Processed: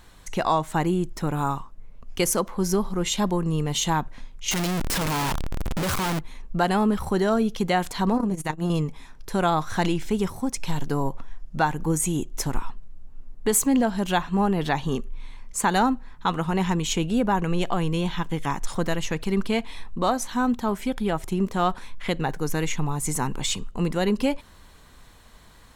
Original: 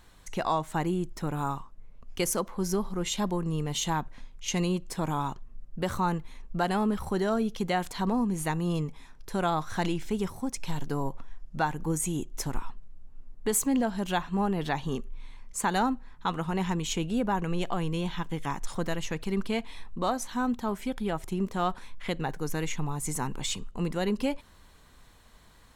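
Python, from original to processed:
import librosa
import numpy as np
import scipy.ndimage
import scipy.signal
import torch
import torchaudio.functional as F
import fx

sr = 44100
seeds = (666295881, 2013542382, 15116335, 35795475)

y = fx.clip_1bit(x, sr, at=(4.51, 6.19))
y = fx.transformer_sat(y, sr, knee_hz=260.0, at=(8.16, 8.7))
y = F.gain(torch.from_numpy(y), 5.5).numpy()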